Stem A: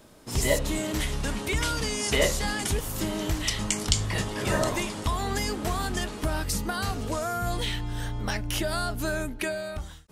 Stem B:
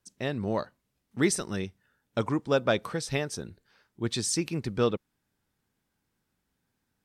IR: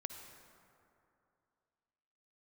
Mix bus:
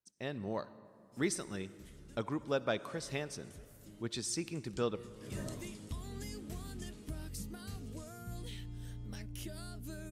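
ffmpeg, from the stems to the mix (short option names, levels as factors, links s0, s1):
-filter_complex "[0:a]firequalizer=gain_entry='entry(150,0);entry(830,-17);entry(2200,-10);entry(8700,-5)':delay=0.05:min_phase=1,adelay=850,volume=0.316,afade=t=in:st=4.59:d=0.73:silence=0.266073[s0];[1:a]agate=range=0.447:threshold=0.00316:ratio=16:detection=peak,volume=0.266,asplit=3[s1][s2][s3];[s2]volume=0.596[s4];[s3]apad=whole_len=487871[s5];[s0][s5]sidechaincompress=threshold=0.00562:ratio=8:attack=16:release=438[s6];[2:a]atrim=start_sample=2205[s7];[s4][s7]afir=irnorm=-1:irlink=0[s8];[s6][s1][s8]amix=inputs=3:normalize=0,lowshelf=f=66:g=-7"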